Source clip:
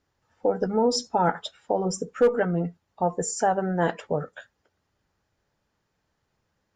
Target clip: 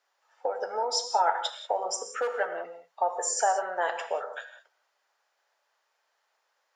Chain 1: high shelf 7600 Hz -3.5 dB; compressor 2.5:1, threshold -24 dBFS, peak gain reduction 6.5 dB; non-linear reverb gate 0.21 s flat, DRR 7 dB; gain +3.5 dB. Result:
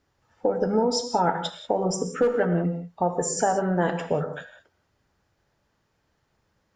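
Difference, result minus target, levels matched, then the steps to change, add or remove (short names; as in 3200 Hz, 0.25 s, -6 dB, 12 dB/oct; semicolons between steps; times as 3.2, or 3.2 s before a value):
500 Hz band +2.5 dB
add after compressor: HPF 610 Hz 24 dB/oct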